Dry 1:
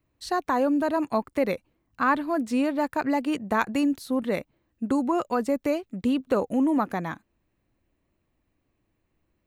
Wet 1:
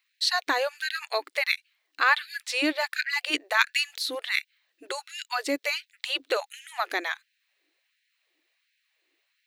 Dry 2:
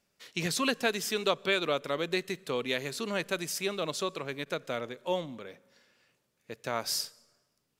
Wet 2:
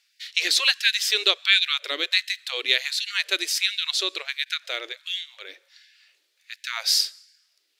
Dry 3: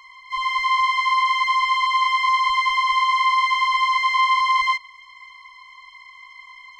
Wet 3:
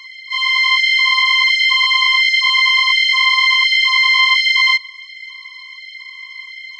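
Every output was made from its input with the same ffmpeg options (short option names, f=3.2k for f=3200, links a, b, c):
-af "equalizer=f=500:t=o:w=1:g=-6,equalizer=f=1k:t=o:w=1:g=-9,equalizer=f=2k:t=o:w=1:g=6,equalizer=f=4k:t=o:w=1:g=11,afftfilt=real='re*gte(b*sr/1024,280*pow(1500/280,0.5+0.5*sin(2*PI*1.4*pts/sr)))':imag='im*gte(b*sr/1024,280*pow(1500/280,0.5+0.5*sin(2*PI*1.4*pts/sr)))':win_size=1024:overlap=0.75,volume=4.5dB"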